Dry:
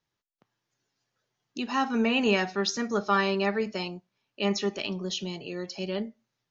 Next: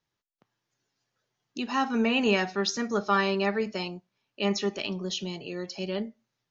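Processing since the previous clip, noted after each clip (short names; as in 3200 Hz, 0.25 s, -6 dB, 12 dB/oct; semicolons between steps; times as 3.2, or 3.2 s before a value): nothing audible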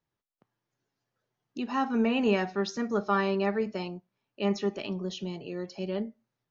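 high shelf 2000 Hz -10.5 dB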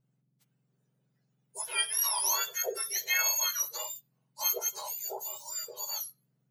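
spectrum mirrored in octaves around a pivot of 1600 Hz; tone controls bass +10 dB, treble +3 dB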